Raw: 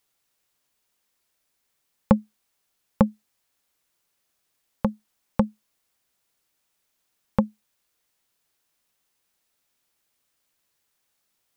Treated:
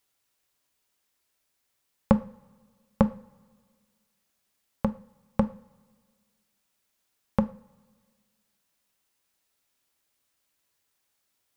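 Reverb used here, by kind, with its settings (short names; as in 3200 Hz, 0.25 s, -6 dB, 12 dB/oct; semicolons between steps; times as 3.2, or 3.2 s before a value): two-slope reverb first 0.36 s, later 1.7 s, from -20 dB, DRR 10 dB; gain -2 dB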